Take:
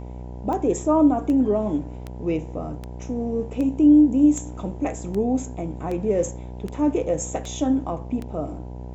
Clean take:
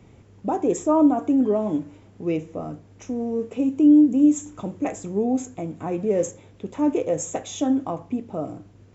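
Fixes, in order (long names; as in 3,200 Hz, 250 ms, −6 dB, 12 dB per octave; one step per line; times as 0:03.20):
click removal
hum removal 61.5 Hz, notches 16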